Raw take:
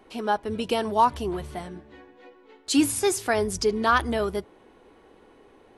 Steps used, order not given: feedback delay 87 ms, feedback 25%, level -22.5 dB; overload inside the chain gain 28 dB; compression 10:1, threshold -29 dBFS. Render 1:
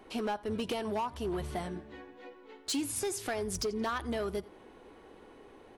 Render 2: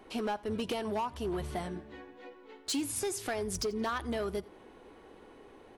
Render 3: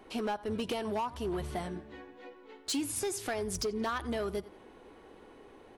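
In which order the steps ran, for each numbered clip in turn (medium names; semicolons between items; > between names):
compression > feedback delay > overload inside the chain; compression > overload inside the chain > feedback delay; feedback delay > compression > overload inside the chain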